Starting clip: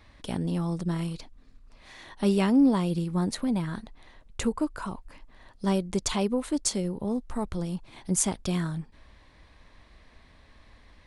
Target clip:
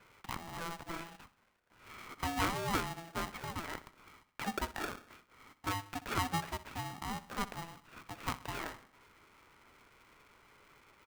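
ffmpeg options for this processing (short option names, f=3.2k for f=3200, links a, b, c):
-filter_complex "[0:a]asettb=1/sr,asplit=3[a][b][c];[a]atrim=end=4.814[d];[b]atrim=start=4.81:end=5.87,asetpts=PTS-STARTPTS,afade=t=in:d=0.004:c=qsin,afade=t=out:st=1.056:d=0.004:c=qsin,lowshelf=f=470:g=-8.5[e];[c]atrim=start=5.866[f];[d][e]acrossfade=d=0.004:c1=hsin:c2=qsin[g];[g][f]acrossfade=d=0.004:c1=qsin:c2=hsin,highpass=f=530:t=q:w=0.5412,highpass=f=530:t=q:w=1.307,lowpass=f=2.3k:t=q:w=0.5176,lowpass=f=2.3k:t=q:w=0.7071,lowpass=f=2.3k:t=q:w=1.932,afreqshift=-170,aecho=1:1:63|126|189|252|315:0.15|0.0823|0.0453|0.0249|0.0137,aeval=exprs='val(0)*sgn(sin(2*PI*500*n/s))':c=same"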